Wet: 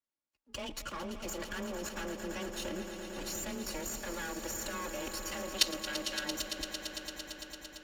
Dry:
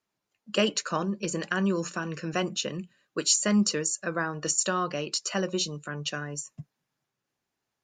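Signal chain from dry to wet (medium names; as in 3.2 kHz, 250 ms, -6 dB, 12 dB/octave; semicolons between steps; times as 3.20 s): comb filter that takes the minimum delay 3.6 ms; 5.54–6.25 s: frequency weighting D; level held to a coarse grid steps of 20 dB; frequency shift +20 Hz; on a send: echo with a slow build-up 113 ms, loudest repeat 5, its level -12 dB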